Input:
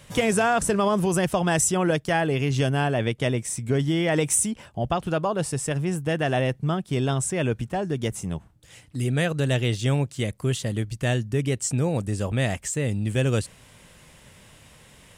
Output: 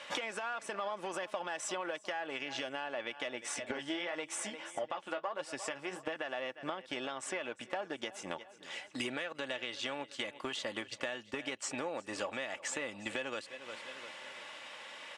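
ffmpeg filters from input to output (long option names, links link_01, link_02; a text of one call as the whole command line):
ffmpeg -i in.wav -filter_complex "[0:a]asettb=1/sr,asplit=3[link_01][link_02][link_03];[link_01]atrim=end=3.604[link_04];[link_02]atrim=start=3.6:end=6.16,asetpts=PTS-STARTPTS,afade=type=in:duration=0.004:curve=qsin,afade=type=out:start_time=2.556:duration=0.004:curve=qsin,flanger=delay=6.3:depth=9.2:regen=23:speed=1.6:shape=sinusoidal[link_05];[link_03]atrim=start=6.156[link_06];[link_04][link_05]acrossfade=duration=0.004:curve1=hsin:curve2=qsin[link_07];[link_07][link_06]acrossfade=duration=0.004:curve1=qsin:curve2=hsin,aecho=1:1:351|702|1053:0.0944|0.0415|0.0183,aeval=exprs='0.355*(cos(1*acos(clip(val(0)/0.355,-1,1)))-cos(1*PI/2))+0.01*(cos(5*acos(clip(val(0)/0.355,-1,1)))-cos(5*PI/2))+0.0112*(cos(7*acos(clip(val(0)/0.355,-1,1)))-cos(7*PI/2))+0.0126*(cos(8*acos(clip(val(0)/0.355,-1,1)))-cos(8*PI/2))':channel_layout=same,highpass=680,lowpass=3800,agate=range=-7dB:threshold=-47dB:ratio=16:detection=peak,alimiter=level_in=1dB:limit=-24dB:level=0:latency=1:release=392,volume=-1dB,acompressor=threshold=-52dB:ratio=6,aecho=1:1:3.5:0.43,volume=15dB" out.wav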